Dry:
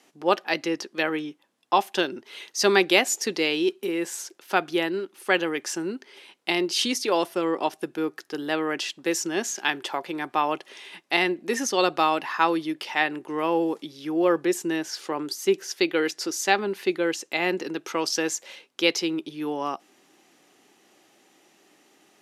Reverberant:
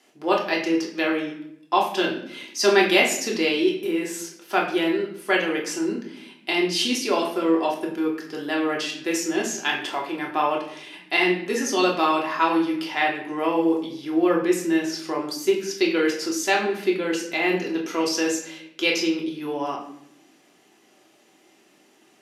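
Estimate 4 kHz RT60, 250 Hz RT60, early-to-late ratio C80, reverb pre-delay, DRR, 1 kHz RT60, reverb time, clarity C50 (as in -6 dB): 0.55 s, 1.2 s, 9.5 dB, 3 ms, -2.0 dB, 0.65 s, 0.75 s, 6.5 dB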